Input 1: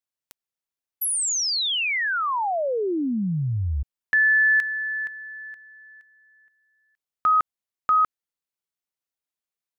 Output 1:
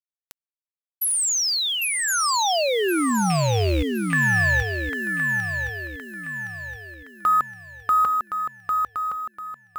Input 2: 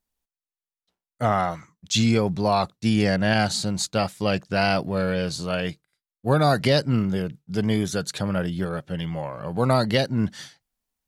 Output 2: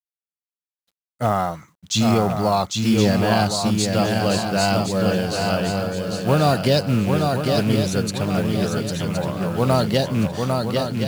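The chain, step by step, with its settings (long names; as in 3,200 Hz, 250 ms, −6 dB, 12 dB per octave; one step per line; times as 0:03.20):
loose part that buzzes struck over −23 dBFS, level −23 dBFS
dynamic equaliser 2,100 Hz, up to −7 dB, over −40 dBFS, Q 1.6
log-companded quantiser 6 bits
on a send: feedback echo with a long and a short gap by turns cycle 1,067 ms, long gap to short 3 to 1, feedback 40%, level −4 dB
on the sum: level +2 dB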